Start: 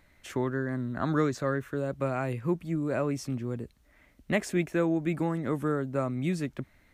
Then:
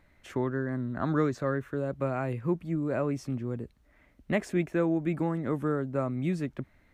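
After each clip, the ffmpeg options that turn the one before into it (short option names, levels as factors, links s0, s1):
-af "highshelf=f=3000:g=-8.5"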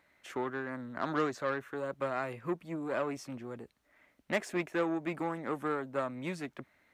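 -af "aeval=exprs='0.211*(cos(1*acos(clip(val(0)/0.211,-1,1)))-cos(1*PI/2))+0.0133*(cos(8*acos(clip(val(0)/0.211,-1,1)))-cos(8*PI/2))':c=same,highpass=f=580:p=1"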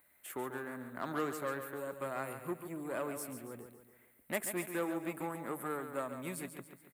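-filter_complex "[0:a]aexciter=amount=12.9:drive=5.4:freq=8500,asplit=2[s0][s1];[s1]aecho=0:1:140|280|420|560|700:0.355|0.167|0.0784|0.0368|0.0173[s2];[s0][s2]amix=inputs=2:normalize=0,volume=0.562"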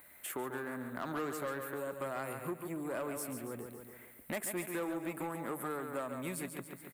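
-af "asoftclip=type=tanh:threshold=0.0316,acompressor=threshold=0.002:ratio=2,volume=3.35"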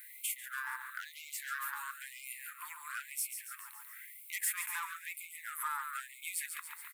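-filter_complex "[0:a]acrossover=split=260|1200|4300[s0][s1][s2][s3];[s2]asoftclip=type=tanh:threshold=0.0112[s4];[s0][s1][s4][s3]amix=inputs=4:normalize=0,afftfilt=real='re*gte(b*sr/1024,820*pow(2100/820,0.5+0.5*sin(2*PI*1*pts/sr)))':imag='im*gte(b*sr/1024,820*pow(2100/820,0.5+0.5*sin(2*PI*1*pts/sr)))':win_size=1024:overlap=0.75,volume=2.11"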